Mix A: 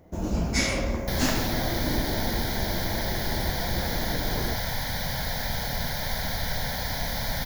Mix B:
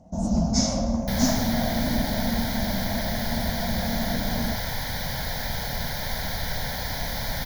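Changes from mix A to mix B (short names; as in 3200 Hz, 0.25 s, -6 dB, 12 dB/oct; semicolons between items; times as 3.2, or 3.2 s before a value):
speech: unmuted; first sound: add EQ curve 120 Hz 0 dB, 230 Hz +10 dB, 370 Hz -15 dB, 670 Hz +7 dB, 2300 Hz -19 dB, 6000 Hz +7 dB, 10000 Hz -16 dB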